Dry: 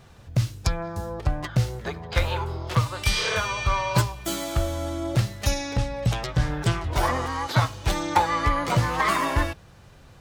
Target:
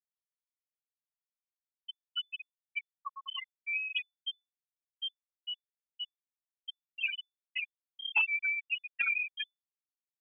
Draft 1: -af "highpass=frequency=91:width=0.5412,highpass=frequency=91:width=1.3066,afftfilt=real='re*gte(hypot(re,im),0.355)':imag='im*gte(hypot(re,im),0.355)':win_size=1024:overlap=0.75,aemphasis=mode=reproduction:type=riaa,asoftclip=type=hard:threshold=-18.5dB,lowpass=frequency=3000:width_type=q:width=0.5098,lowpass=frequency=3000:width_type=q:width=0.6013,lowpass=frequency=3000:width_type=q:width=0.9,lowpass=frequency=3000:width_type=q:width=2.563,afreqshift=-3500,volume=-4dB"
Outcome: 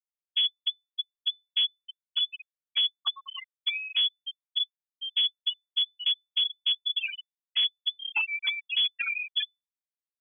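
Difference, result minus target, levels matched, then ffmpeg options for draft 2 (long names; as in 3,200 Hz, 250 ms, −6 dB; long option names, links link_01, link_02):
250 Hz band −2.5 dB
-af "highpass=frequency=230:width=0.5412,highpass=frequency=230:width=1.3066,afftfilt=real='re*gte(hypot(re,im),0.355)':imag='im*gte(hypot(re,im),0.355)':win_size=1024:overlap=0.75,aemphasis=mode=reproduction:type=riaa,asoftclip=type=hard:threshold=-18.5dB,lowpass=frequency=3000:width_type=q:width=0.5098,lowpass=frequency=3000:width_type=q:width=0.6013,lowpass=frequency=3000:width_type=q:width=0.9,lowpass=frequency=3000:width_type=q:width=2.563,afreqshift=-3500,volume=-4dB"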